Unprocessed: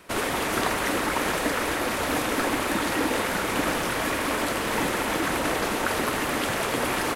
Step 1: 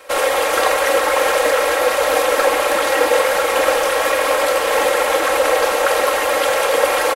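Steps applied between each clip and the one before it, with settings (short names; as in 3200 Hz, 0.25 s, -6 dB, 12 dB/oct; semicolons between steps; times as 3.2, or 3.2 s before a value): resonant low shelf 350 Hz -12 dB, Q 3; comb 3.7 ms, depth 70%; gain +6 dB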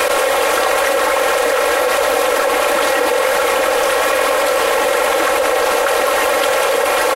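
fast leveller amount 100%; gain -3 dB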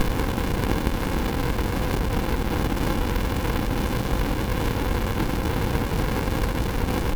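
fixed phaser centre 3000 Hz, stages 4; sample-and-hold 3×; running maximum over 65 samples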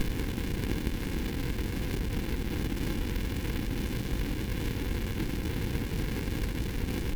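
band shelf 850 Hz -9.5 dB; gain -7 dB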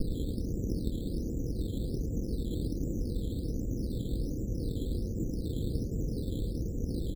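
steep low-pass 650 Hz 72 dB/oct; decimation with a swept rate 9×, swing 60% 1.3 Hz; echo 0.108 s -11 dB; gain -1.5 dB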